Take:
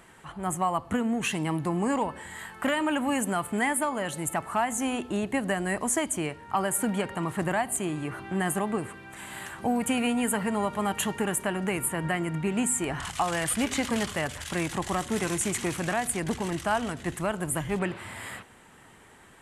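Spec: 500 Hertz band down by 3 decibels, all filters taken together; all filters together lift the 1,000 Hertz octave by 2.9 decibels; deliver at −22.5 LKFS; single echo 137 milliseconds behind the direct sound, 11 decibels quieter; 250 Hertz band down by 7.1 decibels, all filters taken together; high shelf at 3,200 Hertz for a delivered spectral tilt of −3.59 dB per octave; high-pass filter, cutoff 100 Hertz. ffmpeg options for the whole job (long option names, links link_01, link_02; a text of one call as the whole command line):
ffmpeg -i in.wav -af "highpass=100,equalizer=frequency=250:width_type=o:gain=-8.5,equalizer=frequency=500:width_type=o:gain=-3.5,equalizer=frequency=1000:width_type=o:gain=6,highshelf=frequency=3200:gain=-5.5,aecho=1:1:137:0.282,volume=7.5dB" out.wav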